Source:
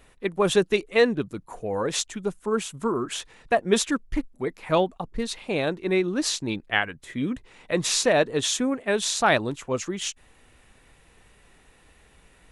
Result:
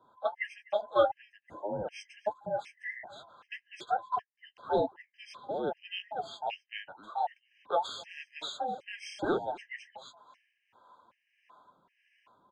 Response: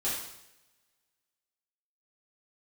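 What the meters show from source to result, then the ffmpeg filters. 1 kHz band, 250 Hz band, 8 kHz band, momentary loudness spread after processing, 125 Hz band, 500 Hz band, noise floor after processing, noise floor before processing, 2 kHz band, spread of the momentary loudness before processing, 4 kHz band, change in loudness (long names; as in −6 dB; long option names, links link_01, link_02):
−4.0 dB, −16.5 dB, −27.0 dB, 16 LU, −17.5 dB, −9.5 dB, −78 dBFS, −58 dBFS, −13.5 dB, 10 LU, −14.0 dB, −10.0 dB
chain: -filter_complex "[0:a]afftfilt=real='real(if(between(b,1,1008),(2*floor((b-1)/48)+1)*48-b,b),0)':imag='imag(if(between(b,1,1008),(2*floor((b-1)/48)+1)*48-b,b),0)*if(between(b,1,1008),-1,1)':win_size=2048:overlap=0.75,highpass=110,lowpass=2700,acrossover=split=410[link_01][link_02];[link_01]aeval=exprs='val(0)*(1-0.7/2+0.7/2*cos(2*PI*1.6*n/s))':channel_layout=same[link_03];[link_02]aeval=exprs='val(0)*(1-0.7/2-0.7/2*cos(2*PI*1.6*n/s))':channel_layout=same[link_04];[link_03][link_04]amix=inputs=2:normalize=0,acrossover=split=290[link_05][link_06];[link_05]aeval=exprs='0.0266*(abs(mod(val(0)/0.0266+3,4)-2)-1)':channel_layout=same[link_07];[link_07][link_06]amix=inputs=2:normalize=0,flanger=delay=4.9:depth=8.2:regen=-37:speed=1.6:shape=triangular,aecho=1:1:252:0.075,afftfilt=real='re*gt(sin(2*PI*1.3*pts/sr)*(1-2*mod(floor(b*sr/1024/1600),2)),0)':imag='im*gt(sin(2*PI*1.3*pts/sr)*(1-2*mod(floor(b*sr/1024/1600),2)),0)':win_size=1024:overlap=0.75,volume=1.5dB"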